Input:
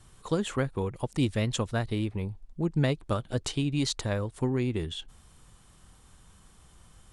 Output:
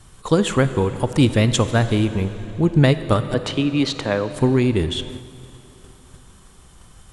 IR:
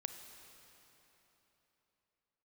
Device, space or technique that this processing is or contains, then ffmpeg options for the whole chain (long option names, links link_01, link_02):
keyed gated reverb: -filter_complex "[0:a]asettb=1/sr,asplit=3[link_01][link_02][link_03];[link_01]atrim=end=3.344[link_04];[link_02]atrim=start=3.34:end=4.31,asetpts=PTS-STARTPTS,afade=type=in:duration=0.004:curve=qsin,afade=type=out:start_time=0.966:duration=0.004:curve=qsin,acrossover=split=190 3900:gain=0.224 1 0.178[link_05][link_06][link_07];[link_05][link_06][link_07]amix=inputs=3:normalize=0[link_08];[link_03]atrim=start=4.306[link_09];[link_04][link_08]acrossfade=duration=0.004:curve1=hsin:curve2=qsin[link_10];[link_10][link_09]acrossfade=duration=0.004:curve1=qsin:curve2=hsin,asplit=3[link_11][link_12][link_13];[1:a]atrim=start_sample=2205[link_14];[link_12][link_14]afir=irnorm=-1:irlink=0[link_15];[link_13]apad=whole_len=314255[link_16];[link_15][link_16]sidechaingate=range=-6dB:threshold=-52dB:ratio=16:detection=peak,volume=6.5dB[link_17];[link_11][link_17]amix=inputs=2:normalize=0,volume=3dB"